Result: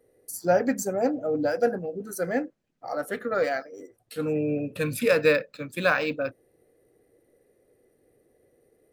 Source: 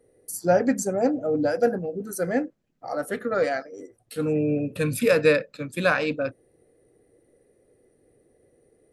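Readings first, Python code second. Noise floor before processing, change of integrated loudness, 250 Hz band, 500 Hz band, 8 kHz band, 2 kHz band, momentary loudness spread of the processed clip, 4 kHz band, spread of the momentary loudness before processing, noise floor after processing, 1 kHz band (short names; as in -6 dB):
-66 dBFS, -2.0 dB, -3.5 dB, -2.0 dB, -3.0 dB, -0.5 dB, 13 LU, -1.0 dB, 12 LU, -68 dBFS, -1.0 dB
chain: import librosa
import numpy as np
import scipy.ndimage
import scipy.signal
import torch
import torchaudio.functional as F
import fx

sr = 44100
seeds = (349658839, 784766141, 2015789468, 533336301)

y = fx.low_shelf(x, sr, hz=390.0, db=-5.0)
y = np.interp(np.arange(len(y)), np.arange(len(y))[::2], y[::2])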